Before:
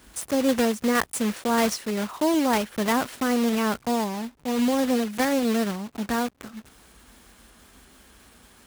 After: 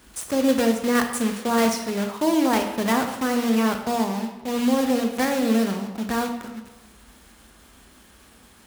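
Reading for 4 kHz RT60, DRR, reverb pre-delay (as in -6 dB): 0.80 s, 4.5 dB, 21 ms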